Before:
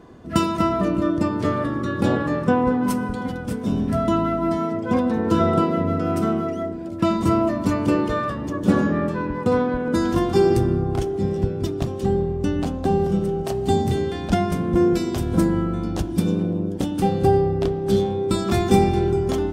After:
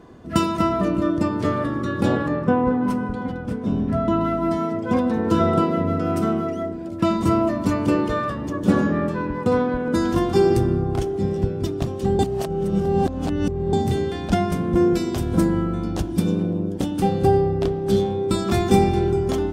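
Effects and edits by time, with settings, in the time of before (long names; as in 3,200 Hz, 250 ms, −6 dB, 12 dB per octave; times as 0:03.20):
0:02.28–0:04.21: low-pass filter 2,000 Hz 6 dB per octave
0:12.19–0:13.73: reverse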